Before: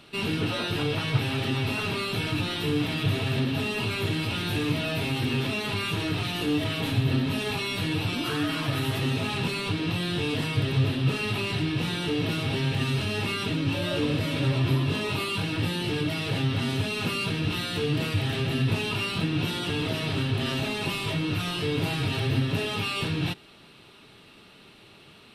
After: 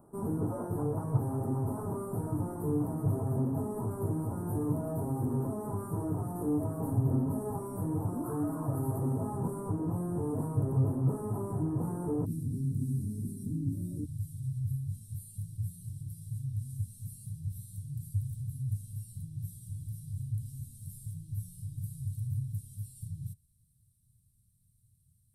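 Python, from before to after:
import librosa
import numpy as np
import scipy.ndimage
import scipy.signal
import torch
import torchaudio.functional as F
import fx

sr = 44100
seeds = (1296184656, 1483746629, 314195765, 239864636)

y = fx.ellip_bandstop(x, sr, low_hz=fx.steps((0.0, 990.0), (12.24, 250.0), (14.04, 110.0)), high_hz=9300.0, order=3, stop_db=60)
y = F.gain(torch.from_numpy(y), -3.5).numpy()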